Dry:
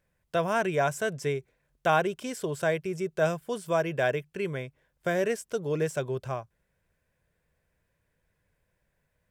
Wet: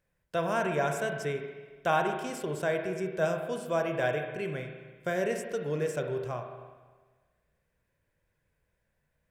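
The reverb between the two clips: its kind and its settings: spring tank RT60 1.4 s, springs 33/48 ms, chirp 45 ms, DRR 4 dB; trim -3.5 dB

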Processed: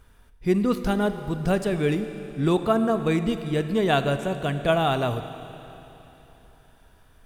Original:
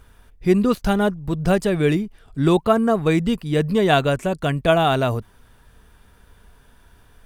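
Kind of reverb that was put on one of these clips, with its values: Schroeder reverb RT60 3.4 s, combs from 28 ms, DRR 9.5 dB; trim -5 dB

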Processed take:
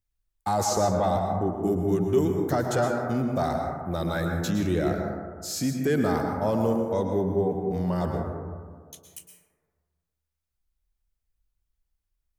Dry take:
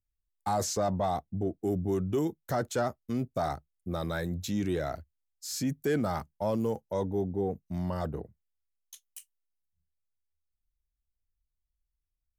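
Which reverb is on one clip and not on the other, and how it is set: plate-style reverb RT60 1.7 s, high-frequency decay 0.25×, pre-delay 100 ms, DRR 2 dB; trim +3.5 dB

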